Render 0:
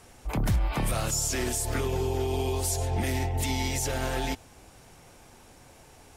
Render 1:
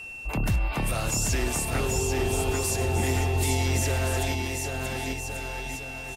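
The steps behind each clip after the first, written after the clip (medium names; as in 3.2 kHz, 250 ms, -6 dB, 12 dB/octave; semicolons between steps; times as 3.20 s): bouncing-ball echo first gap 790 ms, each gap 0.8×, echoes 5; whistle 2.7 kHz -37 dBFS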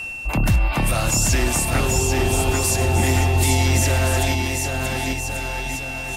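peaking EQ 430 Hz -9 dB 0.2 oct; reverse; upward compressor, threshold -33 dBFS; reverse; trim +7.5 dB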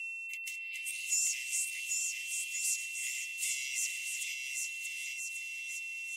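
rippled Chebyshev high-pass 2 kHz, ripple 9 dB; trim -8 dB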